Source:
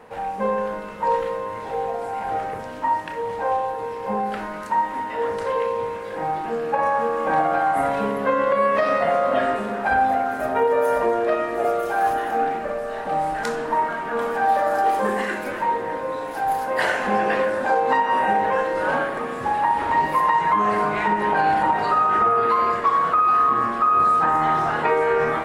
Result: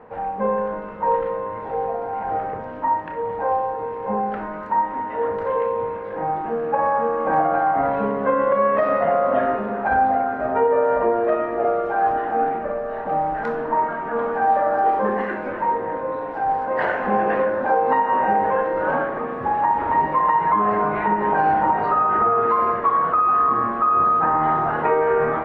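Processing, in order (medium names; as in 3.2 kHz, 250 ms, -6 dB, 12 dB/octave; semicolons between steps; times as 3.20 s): low-pass 1.5 kHz 12 dB/octave; trim +1.5 dB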